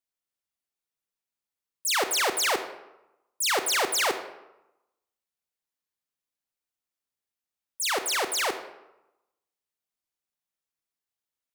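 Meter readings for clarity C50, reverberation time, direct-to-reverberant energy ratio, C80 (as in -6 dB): 10.0 dB, 0.95 s, 8.0 dB, 12.5 dB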